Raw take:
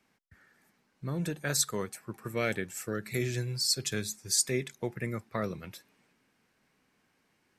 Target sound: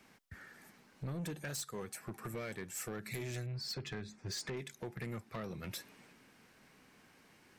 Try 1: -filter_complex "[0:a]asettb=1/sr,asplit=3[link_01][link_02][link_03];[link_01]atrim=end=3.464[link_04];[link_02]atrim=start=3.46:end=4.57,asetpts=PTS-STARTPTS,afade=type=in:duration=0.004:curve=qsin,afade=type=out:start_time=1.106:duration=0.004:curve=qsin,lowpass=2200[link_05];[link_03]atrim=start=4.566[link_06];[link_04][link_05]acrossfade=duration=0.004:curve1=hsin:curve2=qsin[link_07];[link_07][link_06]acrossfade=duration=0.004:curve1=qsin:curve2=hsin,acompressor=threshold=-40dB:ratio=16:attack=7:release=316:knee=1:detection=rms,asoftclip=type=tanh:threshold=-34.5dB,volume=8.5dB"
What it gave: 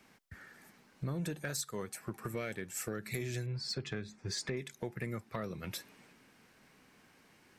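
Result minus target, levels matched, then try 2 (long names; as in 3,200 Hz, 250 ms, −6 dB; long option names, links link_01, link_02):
soft clipping: distortion −12 dB
-filter_complex "[0:a]asettb=1/sr,asplit=3[link_01][link_02][link_03];[link_01]atrim=end=3.464[link_04];[link_02]atrim=start=3.46:end=4.57,asetpts=PTS-STARTPTS,afade=type=in:duration=0.004:curve=qsin,afade=type=out:start_time=1.106:duration=0.004:curve=qsin,lowpass=2200[link_05];[link_03]atrim=start=4.566[link_06];[link_04][link_05]acrossfade=duration=0.004:curve1=hsin:curve2=qsin[link_07];[link_07][link_06]acrossfade=duration=0.004:curve1=qsin:curve2=hsin,acompressor=threshold=-40dB:ratio=16:attack=7:release=316:knee=1:detection=rms,asoftclip=type=tanh:threshold=-44.5dB,volume=8.5dB"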